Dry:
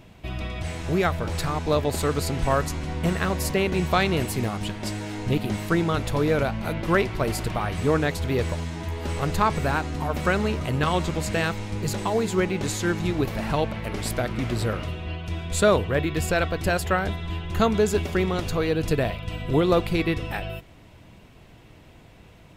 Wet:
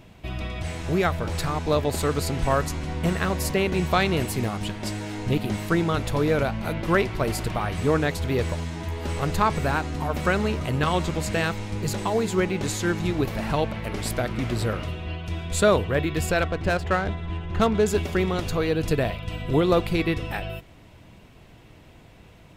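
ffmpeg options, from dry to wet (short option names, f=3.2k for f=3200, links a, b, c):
-filter_complex "[0:a]asettb=1/sr,asplit=3[a][b][c];[a]atrim=end=16.424[d];[b]atrim=start=16.42:end=17.86,asetpts=PTS-STARTPTS,afade=t=in:d=0.004:c=qsin,afade=t=out:st=1.436:d=0.004:c=qsin,adynamicsmooth=sensitivity=3.5:basefreq=2.3k[e];[c]atrim=start=17.856[f];[d][e]acrossfade=d=0.004:c1=hsin:c2=qsin[g];[g][f]acrossfade=d=0.004:c1=qsin:c2=hsin"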